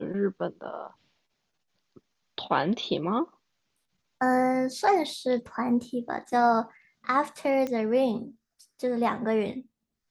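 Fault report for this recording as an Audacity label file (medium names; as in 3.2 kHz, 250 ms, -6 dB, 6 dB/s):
7.670000	7.670000	pop -19 dBFS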